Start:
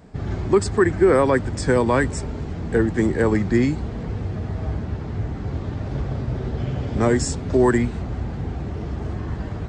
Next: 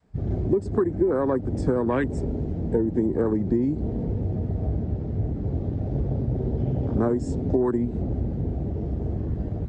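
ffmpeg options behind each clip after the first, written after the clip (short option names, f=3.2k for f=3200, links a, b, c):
-af "adynamicequalizer=threshold=0.0316:dfrequency=300:dqfactor=0.94:tfrequency=300:tqfactor=0.94:attack=5:release=100:ratio=0.375:range=3:mode=boostabove:tftype=bell,acompressor=threshold=-18dB:ratio=20,afwtdn=0.0316"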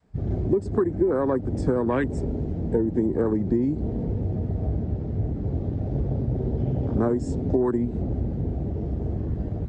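-af anull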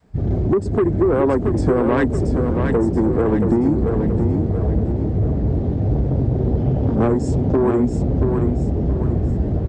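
-filter_complex "[0:a]asoftclip=type=tanh:threshold=-19dB,asplit=2[a][b];[b]aecho=0:1:678|1356|2034|2712|3390:0.531|0.228|0.0982|0.0422|0.0181[c];[a][c]amix=inputs=2:normalize=0,volume=8dB"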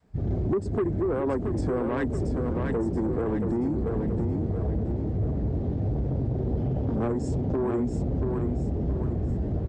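-af "alimiter=limit=-12.5dB:level=0:latency=1:release=25,volume=-7.5dB"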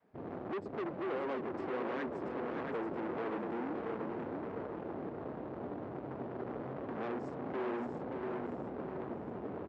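-af "asoftclip=type=hard:threshold=-32dB,highpass=290,lowpass=2.4k,aecho=1:1:574:0.447,volume=-2dB"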